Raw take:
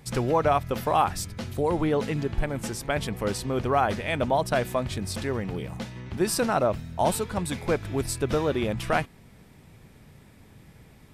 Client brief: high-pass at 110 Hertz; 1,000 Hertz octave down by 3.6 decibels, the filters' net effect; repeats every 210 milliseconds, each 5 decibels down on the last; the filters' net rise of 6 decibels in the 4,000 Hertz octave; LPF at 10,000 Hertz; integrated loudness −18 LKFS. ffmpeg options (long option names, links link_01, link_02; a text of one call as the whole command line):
ffmpeg -i in.wav -af "highpass=110,lowpass=10000,equalizer=frequency=1000:width_type=o:gain=-5.5,equalizer=frequency=4000:width_type=o:gain=8,aecho=1:1:210|420|630|840|1050|1260|1470:0.562|0.315|0.176|0.0988|0.0553|0.031|0.0173,volume=8.5dB" out.wav